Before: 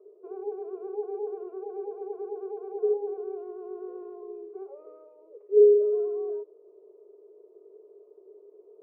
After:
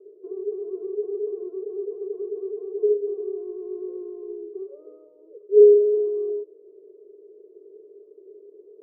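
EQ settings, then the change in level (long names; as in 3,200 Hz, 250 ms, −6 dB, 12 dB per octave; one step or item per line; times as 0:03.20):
moving average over 54 samples
high-frequency loss of the air 450 metres
parametric band 270 Hz +5 dB 1.9 octaves
+6.5 dB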